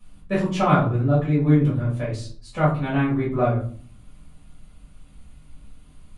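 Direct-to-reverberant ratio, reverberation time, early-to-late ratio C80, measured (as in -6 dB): -9.5 dB, 0.50 s, 11.0 dB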